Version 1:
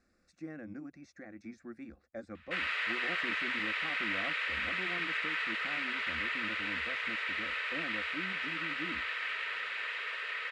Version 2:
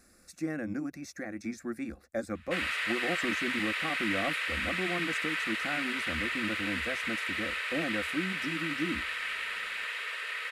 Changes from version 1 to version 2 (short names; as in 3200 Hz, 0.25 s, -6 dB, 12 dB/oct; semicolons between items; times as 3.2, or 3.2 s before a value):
speech +9.5 dB; master: remove air absorption 130 m